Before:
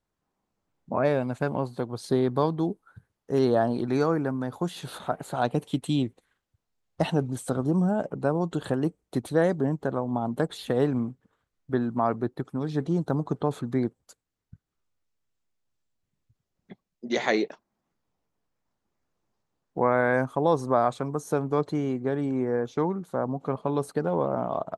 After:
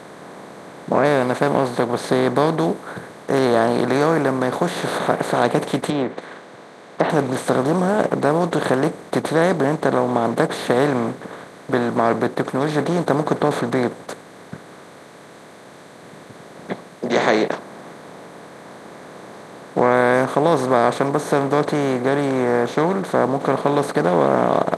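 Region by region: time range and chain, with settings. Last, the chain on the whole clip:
0:05.90–0:07.10: treble cut that deepens with the level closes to 1,700 Hz, closed at −22.5 dBFS + high-pass filter 280 Hz + high-frequency loss of the air 110 metres
whole clip: compressor on every frequency bin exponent 0.4; high-pass filter 150 Hz 6 dB per octave; level +2.5 dB

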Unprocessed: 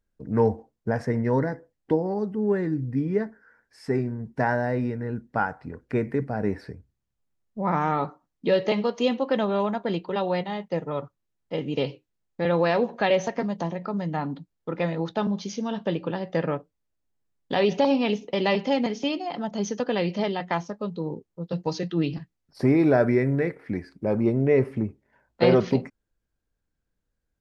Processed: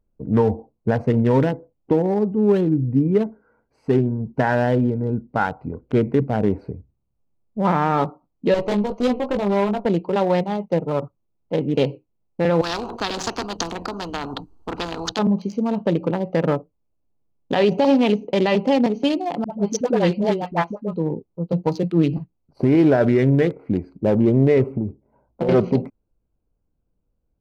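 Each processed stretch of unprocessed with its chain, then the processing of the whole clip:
0:08.54–0:09.86: tube saturation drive 25 dB, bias 0.7 + double-tracking delay 20 ms −4 dB
0:12.61–0:15.19: phaser with its sweep stopped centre 570 Hz, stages 6 + every bin compressed towards the loudest bin 4 to 1
0:19.44–0:20.94: all-pass dispersion highs, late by 75 ms, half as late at 550 Hz + multiband upward and downward expander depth 100%
0:24.72–0:25.49: low-pass filter 1,600 Hz + downward compressor 16 to 1, threshold −25 dBFS
whole clip: adaptive Wiener filter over 25 samples; brickwall limiter −16 dBFS; level +8 dB

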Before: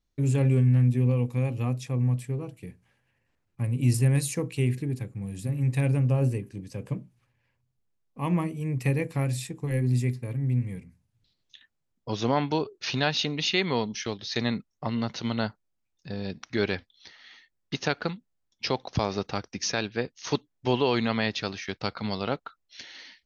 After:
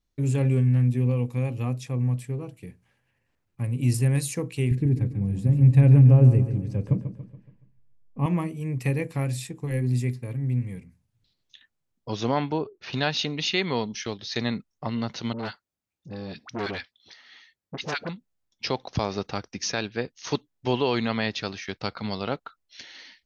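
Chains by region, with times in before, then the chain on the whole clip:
0:04.71–0:08.26: spectral tilt −3 dB per octave + repeating echo 141 ms, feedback 45%, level −10.5 dB
0:12.51–0:12.93: low-pass filter 3,900 Hz 6 dB per octave + high-shelf EQ 2,800 Hz −11 dB
0:15.33–0:18.09: high-pass filter 55 Hz + all-pass dispersion highs, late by 60 ms, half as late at 830 Hz + saturating transformer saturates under 1,100 Hz
whole clip: no processing

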